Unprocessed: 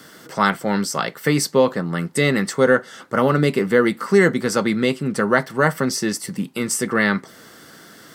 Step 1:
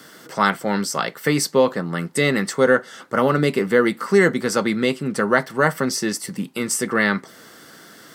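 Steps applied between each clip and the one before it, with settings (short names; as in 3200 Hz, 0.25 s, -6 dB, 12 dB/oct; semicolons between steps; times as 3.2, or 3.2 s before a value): low shelf 120 Hz -7 dB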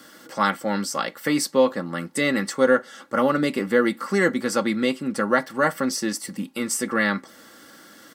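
comb 3.6 ms, depth 54%; gain -4 dB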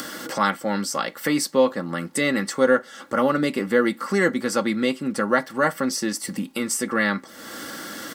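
upward compressor, threshold -22 dBFS; crackle 310/s -52 dBFS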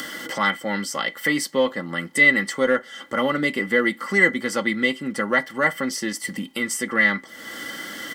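in parallel at -6.5 dB: one-sided clip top -12.5 dBFS; on the sum: small resonant body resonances 2000/3100 Hz, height 18 dB, ringing for 45 ms; gain -5.5 dB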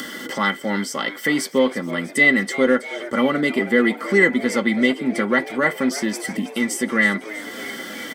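small resonant body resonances 240/390/3500 Hz, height 8 dB, ringing for 45 ms; frequency-shifting echo 0.324 s, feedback 64%, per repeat +95 Hz, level -16 dB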